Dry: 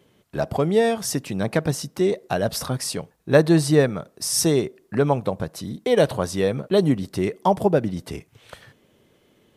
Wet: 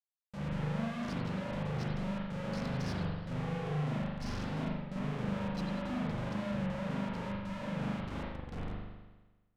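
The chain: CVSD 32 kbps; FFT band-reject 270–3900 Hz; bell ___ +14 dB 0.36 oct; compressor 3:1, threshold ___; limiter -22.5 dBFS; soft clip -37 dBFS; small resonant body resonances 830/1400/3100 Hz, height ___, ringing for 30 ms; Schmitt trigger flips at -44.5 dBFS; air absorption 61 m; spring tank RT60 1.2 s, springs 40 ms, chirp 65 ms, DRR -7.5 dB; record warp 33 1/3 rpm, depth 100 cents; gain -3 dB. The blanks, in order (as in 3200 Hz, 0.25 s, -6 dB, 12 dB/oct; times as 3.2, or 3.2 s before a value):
190 Hz, -30 dBFS, 17 dB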